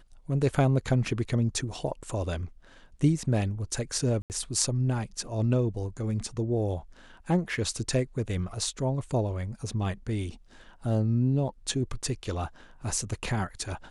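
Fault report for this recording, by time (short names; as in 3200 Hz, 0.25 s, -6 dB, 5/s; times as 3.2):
4.22–4.3 gap 79 ms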